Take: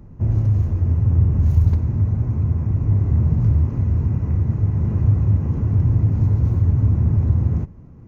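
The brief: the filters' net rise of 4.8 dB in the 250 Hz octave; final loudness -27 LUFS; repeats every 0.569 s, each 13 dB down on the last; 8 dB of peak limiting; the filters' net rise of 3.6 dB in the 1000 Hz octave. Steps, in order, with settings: bell 250 Hz +7 dB; bell 1000 Hz +4 dB; limiter -12 dBFS; feedback echo 0.569 s, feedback 22%, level -13 dB; gain -7 dB

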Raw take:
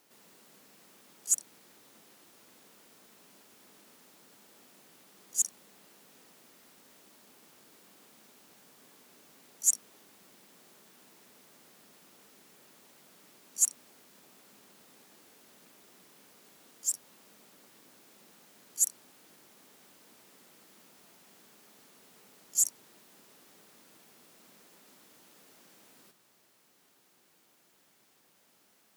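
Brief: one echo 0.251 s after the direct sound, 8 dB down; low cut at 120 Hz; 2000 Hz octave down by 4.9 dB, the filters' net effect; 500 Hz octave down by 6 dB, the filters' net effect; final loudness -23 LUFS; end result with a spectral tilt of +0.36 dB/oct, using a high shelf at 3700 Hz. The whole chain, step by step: HPF 120 Hz; bell 500 Hz -7.5 dB; bell 2000 Hz -4.5 dB; high shelf 3700 Hz -5 dB; echo 0.251 s -8 dB; gain +12 dB

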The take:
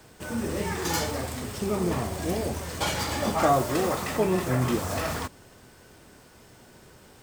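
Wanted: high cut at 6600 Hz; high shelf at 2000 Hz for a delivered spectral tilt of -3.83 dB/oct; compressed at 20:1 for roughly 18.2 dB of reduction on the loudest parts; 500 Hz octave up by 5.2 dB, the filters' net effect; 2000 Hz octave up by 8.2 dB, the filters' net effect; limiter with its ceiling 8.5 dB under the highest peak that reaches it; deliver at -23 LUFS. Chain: LPF 6600 Hz; bell 500 Hz +6 dB; high shelf 2000 Hz +7.5 dB; bell 2000 Hz +5.5 dB; compressor 20:1, threshold -30 dBFS; gain +14.5 dB; limiter -13 dBFS

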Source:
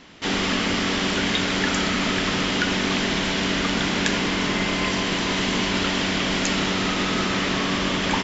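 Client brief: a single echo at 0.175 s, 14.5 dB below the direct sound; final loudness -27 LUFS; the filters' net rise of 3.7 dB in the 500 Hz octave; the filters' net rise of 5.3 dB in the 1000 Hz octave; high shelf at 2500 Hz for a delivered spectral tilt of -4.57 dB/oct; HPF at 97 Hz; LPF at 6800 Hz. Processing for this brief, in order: HPF 97 Hz; LPF 6800 Hz; bell 500 Hz +3.5 dB; bell 1000 Hz +6.5 dB; high shelf 2500 Hz -4.5 dB; echo 0.175 s -14.5 dB; gain -5.5 dB

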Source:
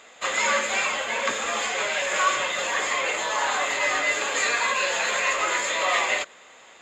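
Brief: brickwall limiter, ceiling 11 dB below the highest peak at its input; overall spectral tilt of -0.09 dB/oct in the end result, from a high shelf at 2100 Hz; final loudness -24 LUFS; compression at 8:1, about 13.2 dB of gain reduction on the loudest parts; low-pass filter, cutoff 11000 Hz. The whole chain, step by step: LPF 11000 Hz; high shelf 2100 Hz -4.5 dB; compressor 8:1, threshold -32 dBFS; gain +14.5 dB; limiter -16.5 dBFS

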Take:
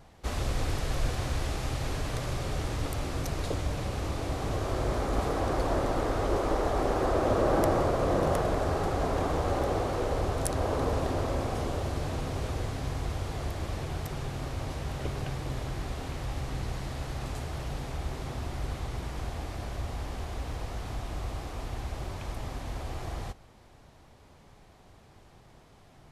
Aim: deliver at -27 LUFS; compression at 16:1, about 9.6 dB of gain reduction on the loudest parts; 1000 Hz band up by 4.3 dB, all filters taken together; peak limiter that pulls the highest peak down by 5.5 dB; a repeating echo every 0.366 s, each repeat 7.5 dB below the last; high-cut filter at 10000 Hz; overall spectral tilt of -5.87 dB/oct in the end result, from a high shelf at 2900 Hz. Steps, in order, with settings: LPF 10000 Hz; bell 1000 Hz +6.5 dB; high shelf 2900 Hz -5.5 dB; compressor 16:1, threshold -29 dBFS; limiter -26 dBFS; feedback echo 0.366 s, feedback 42%, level -7.5 dB; gain +9 dB

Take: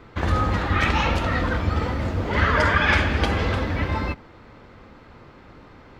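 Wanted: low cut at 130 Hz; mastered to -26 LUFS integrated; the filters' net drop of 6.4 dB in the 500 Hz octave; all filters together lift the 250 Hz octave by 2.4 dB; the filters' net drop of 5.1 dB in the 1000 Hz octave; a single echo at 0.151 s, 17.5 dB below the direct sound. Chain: HPF 130 Hz; bell 250 Hz +6 dB; bell 500 Hz -8.5 dB; bell 1000 Hz -5 dB; echo 0.151 s -17.5 dB; gain -1.5 dB

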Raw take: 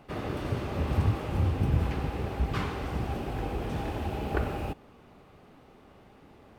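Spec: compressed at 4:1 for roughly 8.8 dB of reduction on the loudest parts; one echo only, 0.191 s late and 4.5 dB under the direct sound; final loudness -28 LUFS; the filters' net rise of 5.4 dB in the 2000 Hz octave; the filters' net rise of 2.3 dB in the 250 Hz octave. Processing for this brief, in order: bell 250 Hz +3 dB; bell 2000 Hz +7 dB; compressor 4:1, threshold -30 dBFS; echo 0.191 s -4.5 dB; gain +5.5 dB

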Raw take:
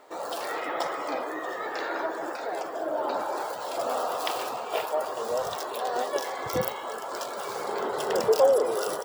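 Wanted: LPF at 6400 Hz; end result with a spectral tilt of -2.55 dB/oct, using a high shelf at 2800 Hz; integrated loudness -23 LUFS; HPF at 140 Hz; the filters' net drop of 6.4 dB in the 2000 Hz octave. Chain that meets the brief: HPF 140 Hz; LPF 6400 Hz; bell 2000 Hz -7 dB; high shelf 2800 Hz -4 dB; gain +7.5 dB

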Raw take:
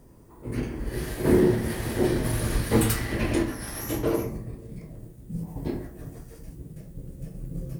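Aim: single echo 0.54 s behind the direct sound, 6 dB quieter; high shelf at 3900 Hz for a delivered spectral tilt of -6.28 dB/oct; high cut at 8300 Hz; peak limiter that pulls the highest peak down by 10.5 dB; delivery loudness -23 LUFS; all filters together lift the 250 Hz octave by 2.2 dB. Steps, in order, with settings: LPF 8300 Hz; bell 250 Hz +3 dB; high shelf 3900 Hz +3.5 dB; limiter -16.5 dBFS; echo 0.54 s -6 dB; gain +5.5 dB

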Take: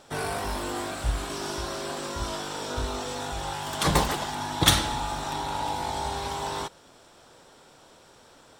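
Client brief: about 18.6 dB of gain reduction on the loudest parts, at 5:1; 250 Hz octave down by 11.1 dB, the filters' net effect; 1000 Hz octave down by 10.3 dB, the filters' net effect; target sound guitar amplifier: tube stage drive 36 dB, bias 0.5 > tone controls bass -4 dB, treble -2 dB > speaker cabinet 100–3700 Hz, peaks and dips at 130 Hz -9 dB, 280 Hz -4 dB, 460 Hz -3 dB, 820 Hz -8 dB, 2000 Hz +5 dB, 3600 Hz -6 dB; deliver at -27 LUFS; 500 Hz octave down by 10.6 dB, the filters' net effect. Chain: bell 250 Hz -6.5 dB; bell 500 Hz -7 dB; bell 1000 Hz -5.5 dB; compressor 5:1, threshold -37 dBFS; tube stage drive 36 dB, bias 0.5; tone controls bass -4 dB, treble -2 dB; speaker cabinet 100–3700 Hz, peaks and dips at 130 Hz -9 dB, 280 Hz -4 dB, 460 Hz -3 dB, 820 Hz -8 dB, 2000 Hz +5 dB, 3600 Hz -6 dB; gain +20 dB

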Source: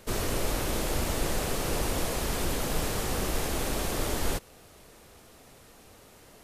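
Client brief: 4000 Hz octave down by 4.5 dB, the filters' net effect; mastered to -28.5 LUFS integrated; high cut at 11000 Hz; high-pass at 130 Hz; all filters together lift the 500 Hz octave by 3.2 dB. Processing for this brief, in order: HPF 130 Hz; LPF 11000 Hz; bell 500 Hz +4 dB; bell 4000 Hz -6 dB; gain +2.5 dB

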